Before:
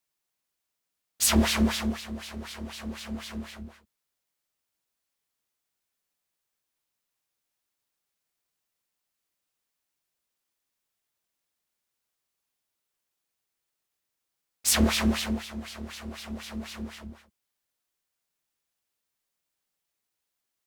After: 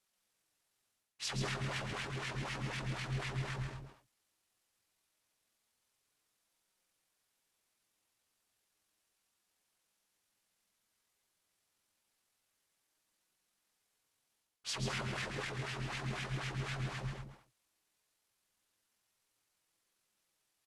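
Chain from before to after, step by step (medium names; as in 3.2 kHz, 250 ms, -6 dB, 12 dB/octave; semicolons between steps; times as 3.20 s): comb 5.7 ms, depth 34%; reverse; compression 8:1, threshold -37 dBFS, peak gain reduction 20 dB; reverse; flange 0.15 Hz, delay 3.1 ms, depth 6.3 ms, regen -41%; pitch shift -9 st; loudspeakers at several distances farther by 46 m -6 dB, 71 m -12 dB; trim +5 dB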